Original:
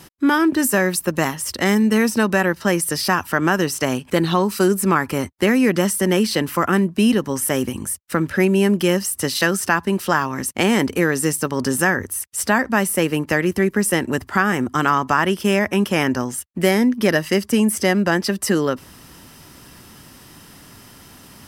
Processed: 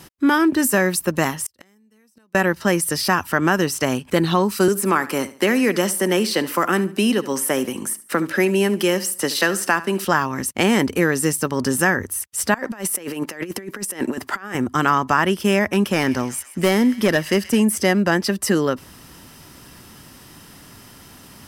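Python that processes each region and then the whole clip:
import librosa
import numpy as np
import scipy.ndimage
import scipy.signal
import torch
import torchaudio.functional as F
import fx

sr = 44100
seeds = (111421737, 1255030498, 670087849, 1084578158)

y = fx.chain(x, sr, fx.high_shelf(hz=5300.0, db=8.5),
    fx.gate_flip(shuts_db=-11.0, range_db=-41), at=(1.46, 2.35))
y = fx.chain(y, sr, fx.highpass(hz=240.0, slope=12),
    fx.echo_feedback(ms=72, feedback_pct=30, wet_db=-17),
    fx.band_squash(depth_pct=40), at=(4.68, 10.05))
y = fx.chain(y, sr, fx.highpass(hz=250.0, slope=12),
    fx.over_compress(threshold_db=-26.0, ratio=-0.5), at=(12.54, 14.55))
y = fx.chain(y, sr, fx.clip_hard(threshold_db=-10.0),
    fx.echo_wet_highpass(ms=129, feedback_pct=62, hz=1600.0, wet_db=-15.0), at=(15.68, 17.63))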